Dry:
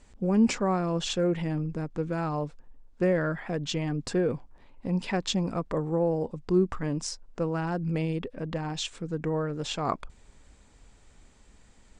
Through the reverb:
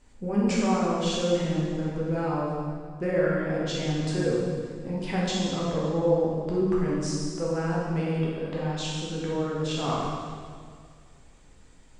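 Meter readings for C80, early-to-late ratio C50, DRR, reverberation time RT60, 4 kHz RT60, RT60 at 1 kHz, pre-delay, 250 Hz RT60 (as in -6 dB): 1.0 dB, -1.5 dB, -6.0 dB, 2.0 s, 1.8 s, 1.9 s, 7 ms, 2.4 s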